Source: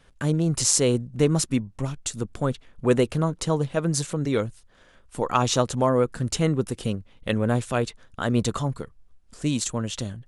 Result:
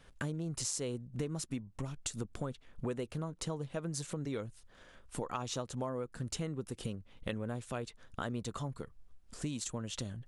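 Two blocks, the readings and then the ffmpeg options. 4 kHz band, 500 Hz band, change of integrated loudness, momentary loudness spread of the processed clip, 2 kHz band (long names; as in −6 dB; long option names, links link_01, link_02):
−13.5 dB, −16.0 dB, −15.0 dB, 6 LU, −13.5 dB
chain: -af "acompressor=threshold=-33dB:ratio=6,volume=-2.5dB"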